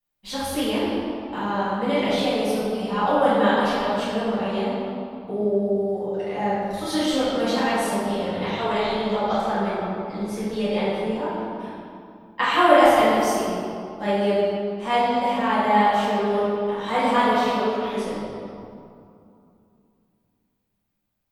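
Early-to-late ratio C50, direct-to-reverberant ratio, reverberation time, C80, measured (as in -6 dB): -3.5 dB, -14.0 dB, 2.5 s, -1.0 dB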